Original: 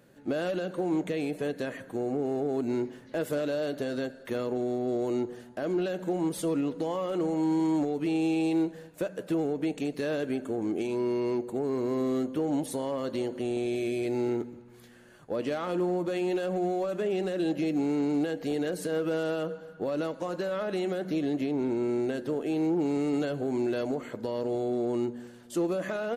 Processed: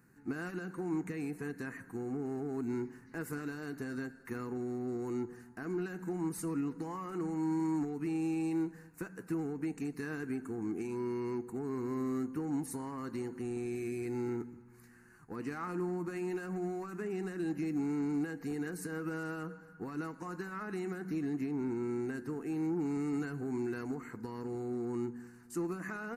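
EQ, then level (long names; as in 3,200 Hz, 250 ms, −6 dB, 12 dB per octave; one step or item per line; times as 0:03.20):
phaser with its sweep stopped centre 1,400 Hz, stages 4
−2.5 dB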